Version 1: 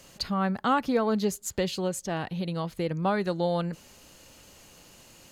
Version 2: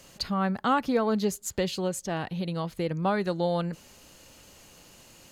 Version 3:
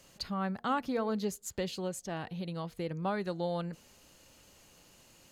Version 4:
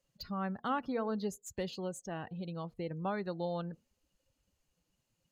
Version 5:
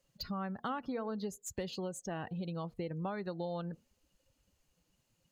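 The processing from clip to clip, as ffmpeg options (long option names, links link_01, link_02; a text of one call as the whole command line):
ffmpeg -i in.wav -af anull out.wav
ffmpeg -i in.wav -af "bandreject=frequency=236.6:width_type=h:width=4,bandreject=frequency=473.2:width_type=h:width=4,bandreject=frequency=709.8:width_type=h:width=4,volume=-7dB" out.wav
ffmpeg -i in.wav -filter_complex "[0:a]afftdn=noise_reduction=21:noise_floor=-49,acrossover=split=2200[link_01][link_02];[link_02]asoftclip=type=tanh:threshold=-36.5dB[link_03];[link_01][link_03]amix=inputs=2:normalize=0,volume=-2.5dB" out.wav
ffmpeg -i in.wav -af "acompressor=threshold=-39dB:ratio=5,volume=4dB" out.wav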